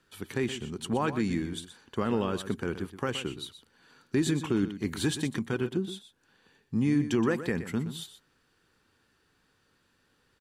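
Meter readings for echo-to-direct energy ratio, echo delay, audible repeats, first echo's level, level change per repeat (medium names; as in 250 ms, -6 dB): -12.0 dB, 122 ms, 1, -12.0 dB, no regular repeats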